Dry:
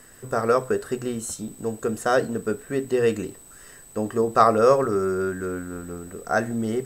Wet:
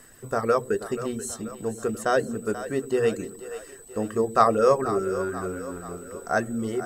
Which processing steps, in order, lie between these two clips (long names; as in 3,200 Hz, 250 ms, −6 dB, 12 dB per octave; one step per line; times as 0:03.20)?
reverb reduction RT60 0.63 s
echo with a time of its own for lows and highs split 400 Hz, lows 96 ms, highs 484 ms, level −12.5 dB
level −1.5 dB